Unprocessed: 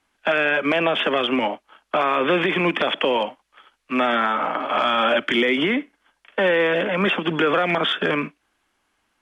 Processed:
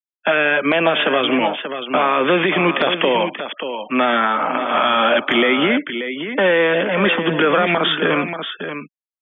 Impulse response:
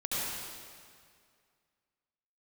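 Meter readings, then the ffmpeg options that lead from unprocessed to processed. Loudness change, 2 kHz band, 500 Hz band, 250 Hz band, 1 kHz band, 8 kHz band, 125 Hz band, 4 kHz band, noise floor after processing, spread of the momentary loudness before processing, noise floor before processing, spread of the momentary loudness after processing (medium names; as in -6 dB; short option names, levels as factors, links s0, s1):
+3.5 dB, +4.0 dB, +4.0 dB, +4.0 dB, +4.0 dB, no reading, +4.0 dB, +4.0 dB, under -85 dBFS, 7 LU, -71 dBFS, 10 LU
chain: -af "aecho=1:1:584:0.355,afftfilt=real='re*gte(hypot(re,im),0.0126)':imag='im*gte(hypot(re,im),0.0126)':win_size=1024:overlap=0.75,volume=1.5"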